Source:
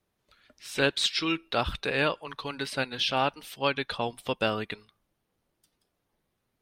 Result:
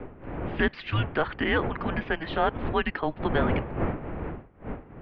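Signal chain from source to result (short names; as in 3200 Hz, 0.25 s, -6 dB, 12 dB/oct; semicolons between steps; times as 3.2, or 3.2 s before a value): wind noise 410 Hz -35 dBFS; in parallel at -1 dB: limiter -22 dBFS, peak gain reduction 11.5 dB; on the sum: wide varispeed 1.32×; mistuned SSB -320 Hz 280–2900 Hz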